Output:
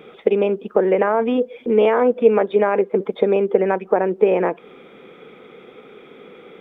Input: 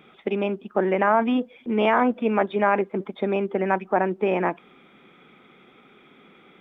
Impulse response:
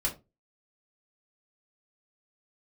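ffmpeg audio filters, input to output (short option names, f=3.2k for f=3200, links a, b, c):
-af "acompressor=threshold=-29dB:ratio=2,equalizer=f=470:t=o:w=0.5:g=14.5,volume=5.5dB"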